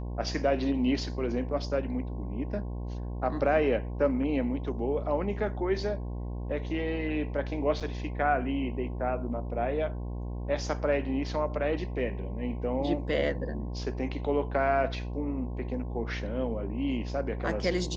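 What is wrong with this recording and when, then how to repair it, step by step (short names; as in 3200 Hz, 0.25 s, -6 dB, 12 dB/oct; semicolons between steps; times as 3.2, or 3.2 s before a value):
buzz 60 Hz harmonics 18 -35 dBFS
7.8–7.81 gap 6.3 ms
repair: de-hum 60 Hz, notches 18; interpolate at 7.8, 6.3 ms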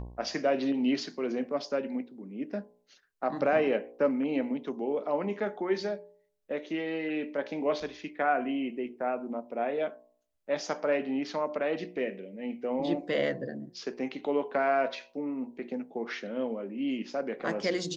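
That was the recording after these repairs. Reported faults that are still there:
none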